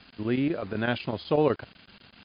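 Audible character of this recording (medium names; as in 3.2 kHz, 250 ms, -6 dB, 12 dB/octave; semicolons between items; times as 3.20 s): chopped level 8 Hz, depth 60%, duty 85%; a quantiser's noise floor 8-bit, dither none; MP3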